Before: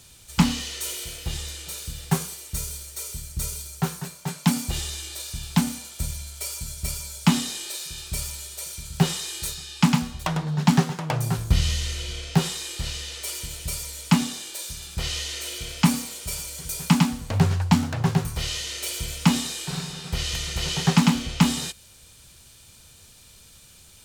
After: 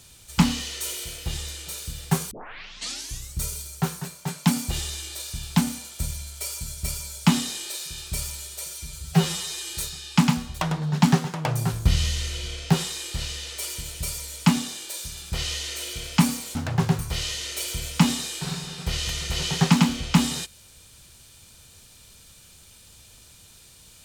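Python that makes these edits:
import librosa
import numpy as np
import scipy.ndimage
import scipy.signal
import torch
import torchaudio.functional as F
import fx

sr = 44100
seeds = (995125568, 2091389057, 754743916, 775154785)

y = fx.edit(x, sr, fx.tape_start(start_s=2.31, length_s=1.07),
    fx.stretch_span(start_s=8.69, length_s=0.7, factor=1.5),
    fx.cut(start_s=16.2, length_s=1.61), tone=tone)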